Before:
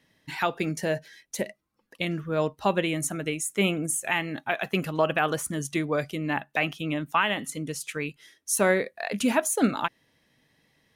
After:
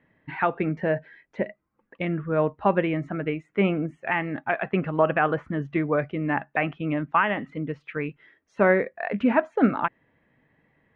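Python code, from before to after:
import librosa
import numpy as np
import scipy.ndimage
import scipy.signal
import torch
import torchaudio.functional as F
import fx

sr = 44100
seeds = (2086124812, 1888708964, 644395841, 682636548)

y = scipy.signal.sosfilt(scipy.signal.butter(4, 2100.0, 'lowpass', fs=sr, output='sos'), x)
y = F.gain(torch.from_numpy(y), 3.0).numpy()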